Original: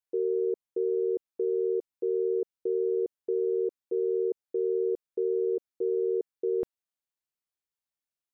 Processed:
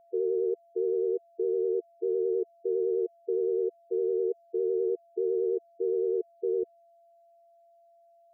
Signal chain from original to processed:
expanding power law on the bin magnitudes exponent 2.1
pitch vibrato 9.8 Hz 47 cents
steady tone 680 Hz −58 dBFS

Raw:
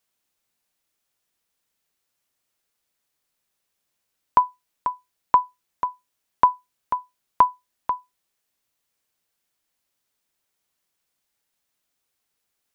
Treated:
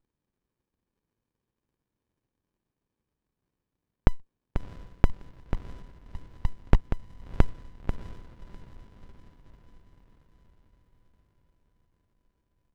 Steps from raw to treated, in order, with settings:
slices reordered back to front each 150 ms, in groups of 3
feedback delay with all-pass diffusion 657 ms, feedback 56%, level −13 dB
windowed peak hold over 65 samples

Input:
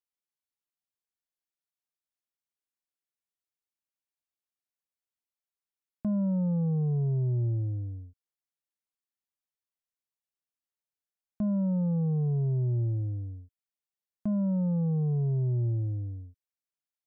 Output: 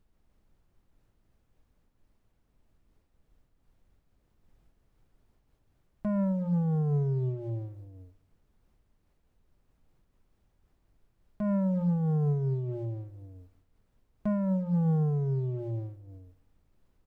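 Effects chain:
parametric band 230 Hz −10.5 dB 0.79 octaves
mains-hum notches 60/120/180 Hz
comb filter 4.9 ms, depth 88%
leveller curve on the samples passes 1
in parallel at −2.5 dB: brickwall limiter −31.5 dBFS, peak gain reduction 9 dB
on the sum: background noise brown −63 dBFS
on a send: repeating echo 109 ms, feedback 58%, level −21.5 dB
on the sum: amplitude modulation by smooth noise, depth 55%

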